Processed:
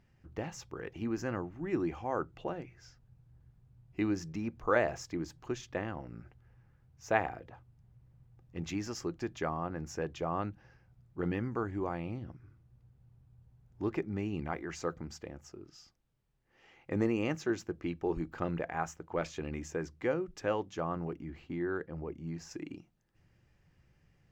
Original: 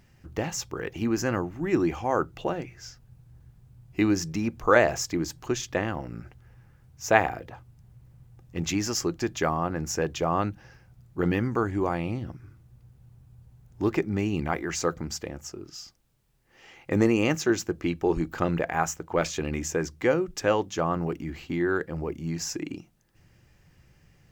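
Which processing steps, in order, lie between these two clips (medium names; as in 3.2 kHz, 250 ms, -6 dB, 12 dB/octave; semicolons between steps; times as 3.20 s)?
low-pass 2.9 kHz 6 dB/octave, from 21.10 s 1.7 kHz, from 22.51 s 3.7 kHz; trim -8.5 dB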